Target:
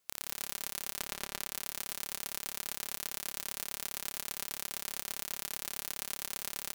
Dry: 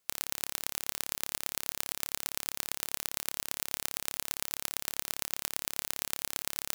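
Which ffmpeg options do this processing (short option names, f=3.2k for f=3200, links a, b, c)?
-filter_complex "[0:a]asettb=1/sr,asplit=3[a][b][c];[a]atrim=end=0.994[d];[b]atrim=start=0.99:end=1.4,asetpts=PTS-STARTPTS,afade=t=in:d=0.004:c=qsin,afade=t=out:st=0.406:d=0.004:c=qsin,aemphasis=mode=reproduction:type=cd[e];[c]atrim=start=1.396[f];[d][e]acrossfade=d=0.004:c1=hsin:c2=qsin[g];[g][f]acrossfade=d=0.004:c1=qsin:c2=hsin,aecho=1:1:119|238|357:0.531|0.138|0.0359,alimiter=limit=-9dB:level=0:latency=1:release=128"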